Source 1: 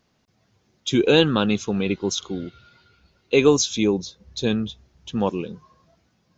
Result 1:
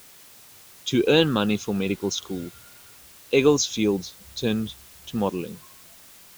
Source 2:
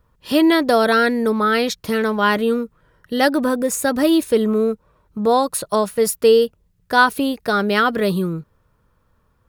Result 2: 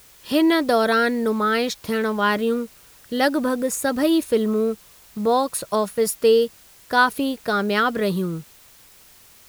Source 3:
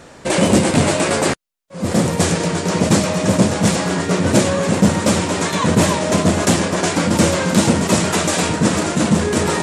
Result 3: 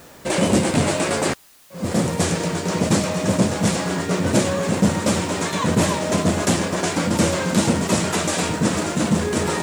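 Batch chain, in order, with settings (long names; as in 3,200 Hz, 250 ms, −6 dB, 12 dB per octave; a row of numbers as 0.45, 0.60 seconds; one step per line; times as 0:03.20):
background noise white −47 dBFS
normalise the peak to −6 dBFS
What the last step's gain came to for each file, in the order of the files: −2.0, −3.0, −4.0 decibels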